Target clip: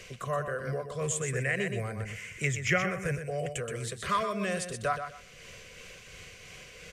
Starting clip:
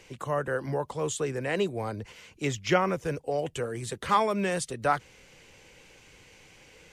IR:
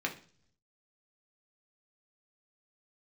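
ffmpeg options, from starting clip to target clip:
-filter_complex "[0:a]acompressor=threshold=-51dB:ratio=1.5,asettb=1/sr,asplit=3[link_01][link_02][link_03];[link_01]atrim=end=1.014[link_04];[link_02]atrim=start=1.01:end=3.59,asetpts=PTS-STARTPTS,afade=type=in:duration=0.004:curve=qsin,afade=type=out:start_time=2.576:duration=0.004:curve=qsin,equalizer=frequency=125:width_type=o:width=1:gain=6,equalizer=frequency=1000:width_type=o:width=1:gain=-7,equalizer=frequency=2000:width_type=o:width=1:gain=12,equalizer=frequency=4000:width_type=o:width=1:gain=-11,equalizer=frequency=8000:width_type=o:width=1:gain=8[link_05];[link_03]atrim=start=3.586[link_06];[link_04][link_05]acrossfade=duration=0.004:curve1=hsin:curve2=qsin[link_07];[link_07][link_06]acrossfade=duration=0.004:curve1=qsin:curve2=hsin,aecho=1:1:124|248|372:0.447|0.0804|0.0145,tremolo=f=2.9:d=0.28,asuperstop=centerf=870:order=20:qfactor=4.2,equalizer=frequency=300:width=3.4:gain=-14,volume=7.5dB"

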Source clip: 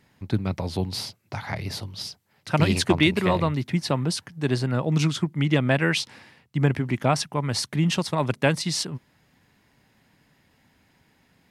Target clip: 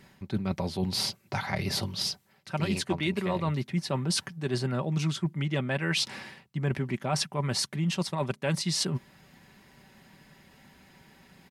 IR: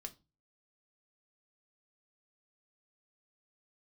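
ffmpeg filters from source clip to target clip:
-af "aecho=1:1:5.2:0.44,areverse,acompressor=threshold=-32dB:ratio=6,areverse,volume=5.5dB"

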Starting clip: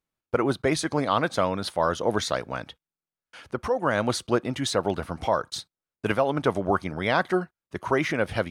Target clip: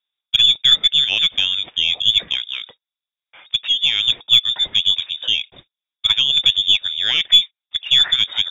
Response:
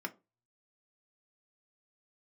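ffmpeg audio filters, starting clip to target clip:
-af "equalizer=frequency=330:width=1.6:gain=14,lowpass=frequency=3200:width_type=q:width=0.5098,lowpass=frequency=3200:width_type=q:width=0.6013,lowpass=frequency=3200:width_type=q:width=0.9,lowpass=frequency=3200:width_type=q:width=2.563,afreqshift=-3800,aeval=exprs='0.794*(cos(1*acos(clip(val(0)/0.794,-1,1)))-cos(1*PI/2))+0.0282*(cos(4*acos(clip(val(0)/0.794,-1,1)))-cos(4*PI/2))':channel_layout=same,volume=1dB"

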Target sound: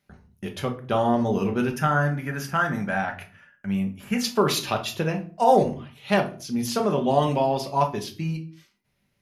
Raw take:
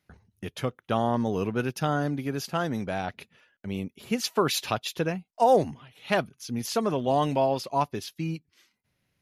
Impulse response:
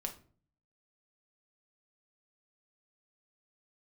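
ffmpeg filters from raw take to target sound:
-filter_complex "[0:a]asettb=1/sr,asplit=3[link_01][link_02][link_03];[link_01]atrim=end=1.754[link_04];[link_02]atrim=start=1.75:end=4.21,asetpts=PTS-STARTPTS,afade=type=in:duration=0.004:curve=qsin,afade=type=out:start_time=2.456:duration=0.004:curve=qsin,equalizer=frequency=400:width_type=o:width=0.67:gain=-8,equalizer=frequency=1600:width_type=o:width=0.67:gain=10,equalizer=frequency=4000:width_type=o:width=0.67:gain=-10[link_05];[link_03]atrim=start=4.206[link_06];[link_04][link_05]acrossfade=duration=0.004:curve1=hsin:curve2=qsin[link_07];[link_07][link_06]acrossfade=duration=0.004:curve1=qsin:curve2=hsin[link_08];[1:a]atrim=start_sample=2205,afade=type=out:start_time=0.32:duration=0.01,atrim=end_sample=14553[link_09];[link_08][link_09]afir=irnorm=-1:irlink=0,volume=3.5dB"

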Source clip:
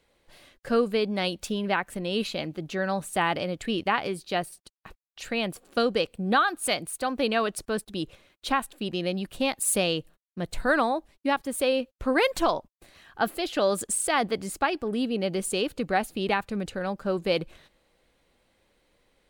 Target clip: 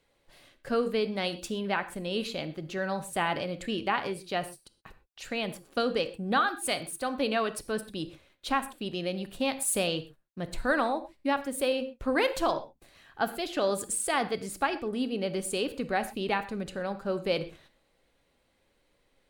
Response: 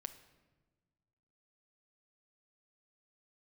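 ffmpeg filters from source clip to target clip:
-filter_complex "[1:a]atrim=start_sample=2205,afade=type=out:start_time=0.17:duration=0.01,atrim=end_sample=7938,asetrate=39690,aresample=44100[link_01];[0:a][link_01]afir=irnorm=-1:irlink=0"

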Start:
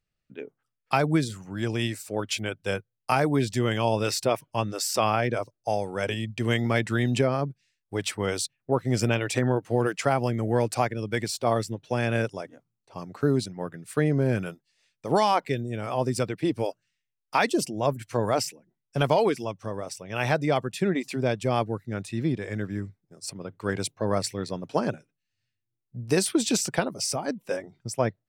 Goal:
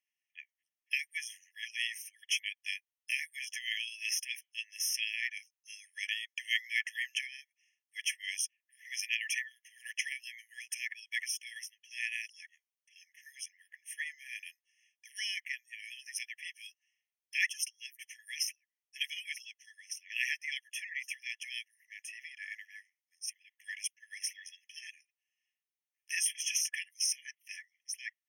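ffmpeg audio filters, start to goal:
ffmpeg -i in.wav -af "afftfilt=real='re*eq(mod(floor(b*sr/1024/1700),2),1)':imag='im*eq(mod(floor(b*sr/1024/1700),2),1)':win_size=1024:overlap=0.75" out.wav

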